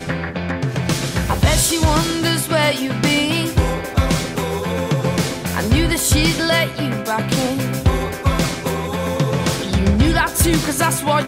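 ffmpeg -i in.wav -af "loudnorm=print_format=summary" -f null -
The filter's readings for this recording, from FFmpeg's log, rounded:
Input Integrated:    -18.0 LUFS
Input True Peak:      -4.0 dBTP
Input LRA:             1.1 LU
Input Threshold:     -28.0 LUFS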